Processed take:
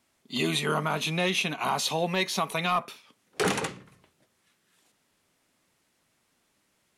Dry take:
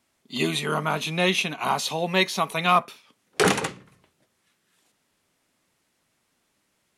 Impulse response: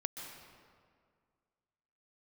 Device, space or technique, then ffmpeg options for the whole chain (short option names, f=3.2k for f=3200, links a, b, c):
soft clipper into limiter: -af "asoftclip=type=tanh:threshold=-9dB,alimiter=limit=-16.5dB:level=0:latency=1:release=105"